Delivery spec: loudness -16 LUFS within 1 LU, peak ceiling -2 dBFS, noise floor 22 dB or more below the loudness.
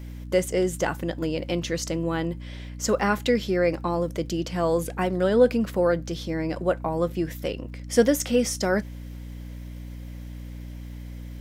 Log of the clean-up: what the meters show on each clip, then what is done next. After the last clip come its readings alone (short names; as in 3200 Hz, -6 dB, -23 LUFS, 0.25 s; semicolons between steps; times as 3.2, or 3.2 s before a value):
ticks 24/s; hum 60 Hz; harmonics up to 300 Hz; hum level -35 dBFS; loudness -25.0 LUFS; peak -7.5 dBFS; loudness target -16.0 LUFS
-> de-click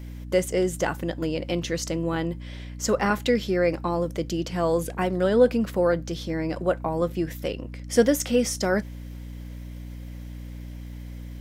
ticks 0.35/s; hum 60 Hz; harmonics up to 300 Hz; hum level -35 dBFS
-> notches 60/120/180/240/300 Hz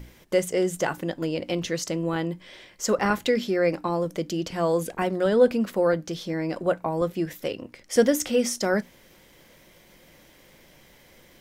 hum none; loudness -25.5 LUFS; peak -8.0 dBFS; loudness target -16.0 LUFS
-> gain +9.5 dB; limiter -2 dBFS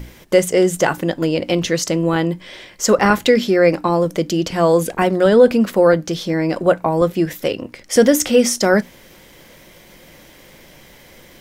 loudness -16.5 LUFS; peak -2.0 dBFS; noise floor -45 dBFS